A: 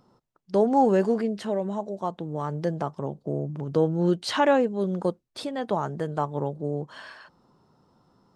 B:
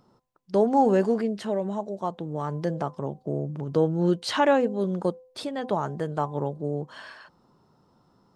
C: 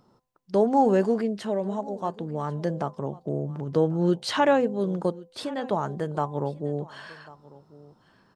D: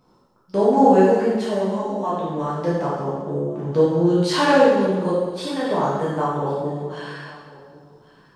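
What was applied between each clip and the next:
de-hum 255.2 Hz, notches 4
delay 1095 ms -21 dB
plate-style reverb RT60 1.3 s, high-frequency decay 0.95×, DRR -9 dB; trim -2.5 dB

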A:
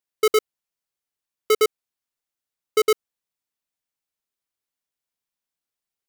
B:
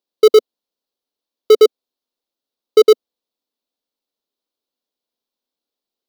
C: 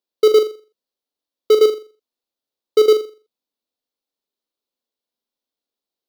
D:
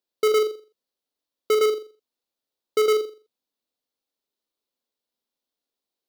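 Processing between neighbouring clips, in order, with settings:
graphic EQ 125/250/500/1000/2000/4000/8000 Hz -11/+12/+10/+3/-7/+11/-6 dB; trim -1 dB
flutter echo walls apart 7.2 m, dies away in 0.35 s; trim -3.5 dB
saturation -16.5 dBFS, distortion -8 dB

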